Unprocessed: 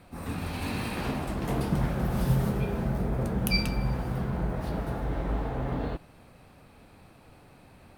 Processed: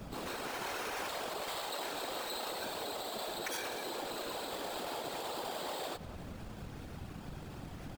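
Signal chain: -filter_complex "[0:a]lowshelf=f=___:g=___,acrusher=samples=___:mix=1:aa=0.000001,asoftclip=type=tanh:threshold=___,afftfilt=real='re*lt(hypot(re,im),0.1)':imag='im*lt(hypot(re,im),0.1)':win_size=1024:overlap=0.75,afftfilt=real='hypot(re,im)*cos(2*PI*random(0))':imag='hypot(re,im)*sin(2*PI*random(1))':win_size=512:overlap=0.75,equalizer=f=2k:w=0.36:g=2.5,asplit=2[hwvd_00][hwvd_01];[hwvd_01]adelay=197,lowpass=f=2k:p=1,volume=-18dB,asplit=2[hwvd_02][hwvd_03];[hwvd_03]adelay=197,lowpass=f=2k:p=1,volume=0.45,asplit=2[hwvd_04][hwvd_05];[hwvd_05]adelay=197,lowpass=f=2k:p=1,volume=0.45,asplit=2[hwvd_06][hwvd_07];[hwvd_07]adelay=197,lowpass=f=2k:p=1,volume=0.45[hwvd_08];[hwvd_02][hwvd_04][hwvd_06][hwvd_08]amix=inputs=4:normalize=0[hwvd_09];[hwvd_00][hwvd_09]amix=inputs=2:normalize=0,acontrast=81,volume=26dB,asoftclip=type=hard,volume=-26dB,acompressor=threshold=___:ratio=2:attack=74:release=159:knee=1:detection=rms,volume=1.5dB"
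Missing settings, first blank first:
280, 9, 11, -11dB, -46dB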